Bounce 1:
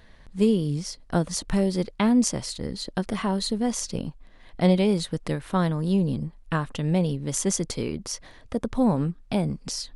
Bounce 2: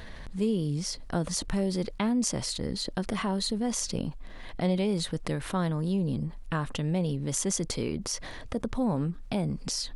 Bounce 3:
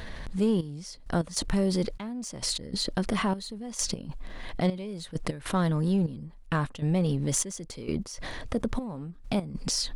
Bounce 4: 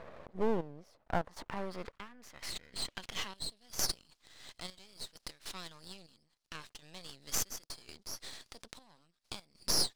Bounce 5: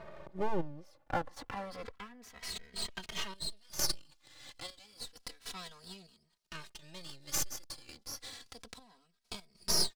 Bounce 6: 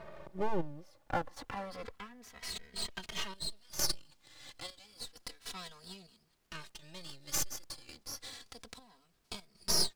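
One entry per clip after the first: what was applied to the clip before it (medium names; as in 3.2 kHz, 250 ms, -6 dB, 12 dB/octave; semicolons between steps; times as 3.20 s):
level flattener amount 50%; trim -8 dB
in parallel at -5.5 dB: overload inside the chain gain 27 dB; on the sum: trance gate "xxxx...x." 99 bpm -12 dB
band-pass sweep 560 Hz -> 4.8 kHz, 0.70–3.68 s; half-wave rectifier; trim +6 dB
endless flanger 2.8 ms -0.3 Hz; trim +3.5 dB
added noise pink -77 dBFS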